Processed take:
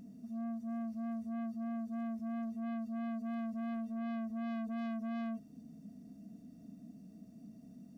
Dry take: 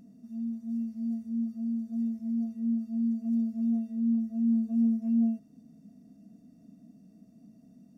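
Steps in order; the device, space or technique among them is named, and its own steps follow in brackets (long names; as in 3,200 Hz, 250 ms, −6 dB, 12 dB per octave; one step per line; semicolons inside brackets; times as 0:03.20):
open-reel tape (soft clipping −39 dBFS, distortion −5 dB; parametric band 72 Hz +3.5 dB; white noise bed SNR 47 dB)
level +1.5 dB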